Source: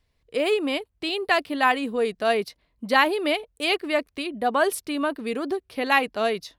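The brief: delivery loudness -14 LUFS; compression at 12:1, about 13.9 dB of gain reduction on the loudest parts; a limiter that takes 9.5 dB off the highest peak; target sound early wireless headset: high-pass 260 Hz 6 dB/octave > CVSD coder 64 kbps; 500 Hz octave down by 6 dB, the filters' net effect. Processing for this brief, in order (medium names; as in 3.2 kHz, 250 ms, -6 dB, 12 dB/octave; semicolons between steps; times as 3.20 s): peaking EQ 500 Hz -6.5 dB; compression 12:1, threshold -29 dBFS; peak limiter -26 dBFS; high-pass 260 Hz 6 dB/octave; CVSD coder 64 kbps; trim +23.5 dB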